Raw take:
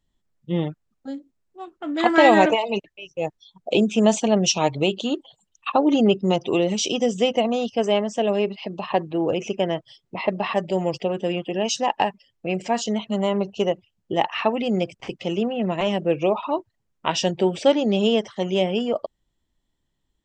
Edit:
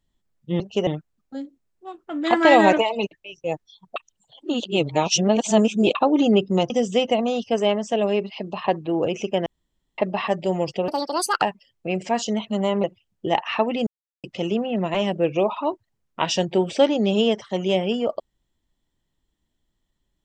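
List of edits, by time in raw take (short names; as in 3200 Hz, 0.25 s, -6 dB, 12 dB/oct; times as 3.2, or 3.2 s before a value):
3.69–5.68 reverse
6.43–6.96 cut
9.72–10.24 room tone
11.14–12.01 speed 162%
13.43–13.7 move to 0.6
14.73–15.1 mute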